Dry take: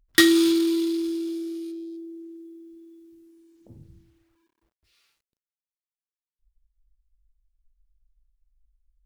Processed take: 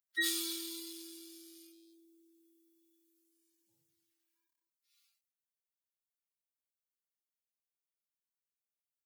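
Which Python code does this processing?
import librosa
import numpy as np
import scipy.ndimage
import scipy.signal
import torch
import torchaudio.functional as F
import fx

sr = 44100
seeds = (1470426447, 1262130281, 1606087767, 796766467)

y = fx.hpss_only(x, sr, part='harmonic')
y = scipy.signal.sosfilt(scipy.signal.butter(2, 130.0, 'highpass', fs=sr, output='sos'), y)
y = np.diff(y, prepend=0.0)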